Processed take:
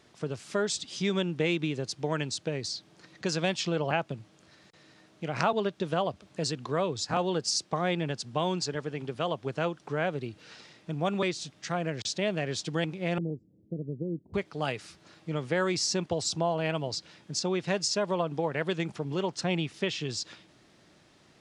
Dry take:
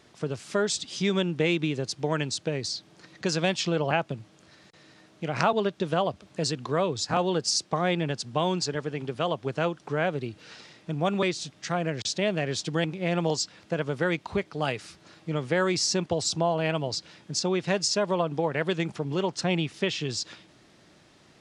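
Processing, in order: 13.18–14.34 inverse Chebyshev low-pass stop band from 1300 Hz, stop band 60 dB; gain -3 dB

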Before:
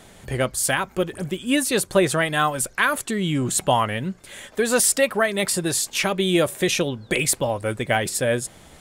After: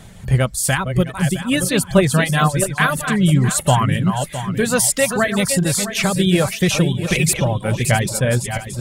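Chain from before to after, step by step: regenerating reverse delay 0.33 s, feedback 57%, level -7 dB; reverb removal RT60 0.54 s; resonant low shelf 220 Hz +8.5 dB, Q 1.5; gain +2.5 dB

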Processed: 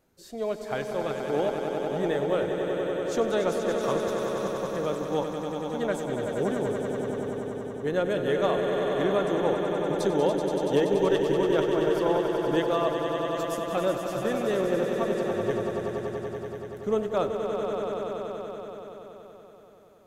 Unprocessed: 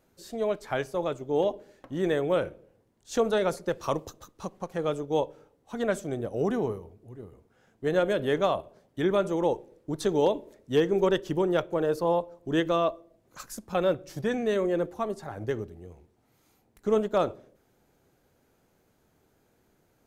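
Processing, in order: swelling echo 95 ms, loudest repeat 5, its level -8 dB; gain -2 dB

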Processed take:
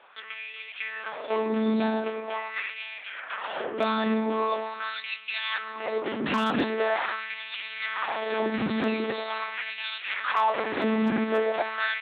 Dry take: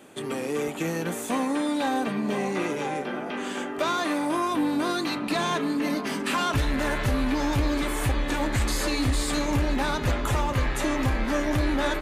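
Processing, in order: monotone LPC vocoder at 8 kHz 220 Hz; LFO high-pass sine 0.43 Hz 220–2700 Hz; overloaded stage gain 15 dB

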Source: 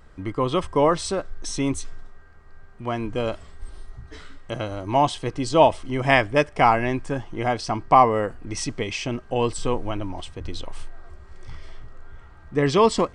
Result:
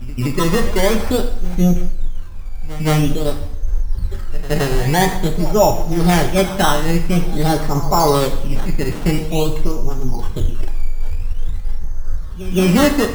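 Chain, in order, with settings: tilt -3 dB/oct; in parallel at +1 dB: negative-ratio compressor -20 dBFS, ratio -1; on the sum: formant-preserving pitch shift +4.5 st; decimation with a swept rate 13×, swing 100% 0.48 Hz; on a send: reverse echo 0.169 s -16.5 dB; on the sum: two-slope reverb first 0.66 s, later 1.7 s, DRR 4 dB; gain -2.5 dB

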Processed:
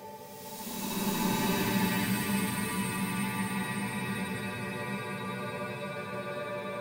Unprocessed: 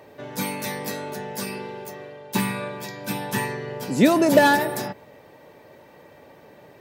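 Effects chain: tube stage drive 13 dB, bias 0.35; diffused feedback echo 0.513 s, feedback 51%, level -10.5 dB; Paulstretch 19×, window 0.10 s, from 2.29; gain -5.5 dB

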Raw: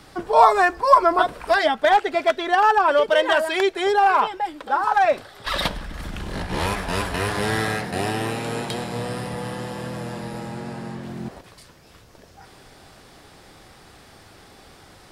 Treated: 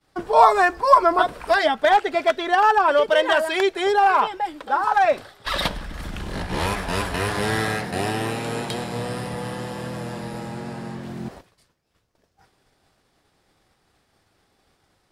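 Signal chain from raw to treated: expander -36 dBFS

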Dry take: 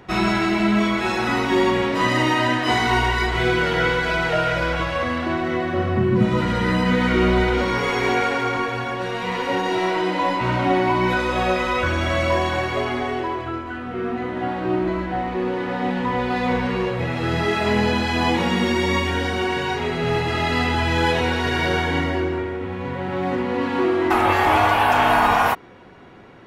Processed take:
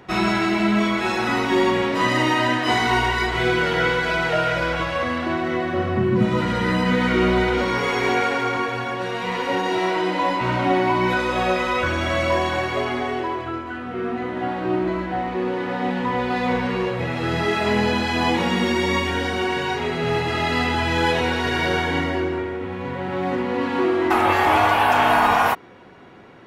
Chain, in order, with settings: low shelf 64 Hz -9.5 dB

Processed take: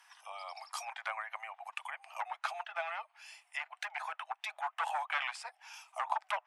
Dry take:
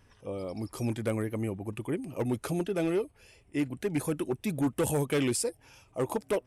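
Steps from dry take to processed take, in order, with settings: treble ducked by the level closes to 2000 Hz, closed at -27.5 dBFS; steep high-pass 720 Hz 72 dB/oct; gain +6 dB

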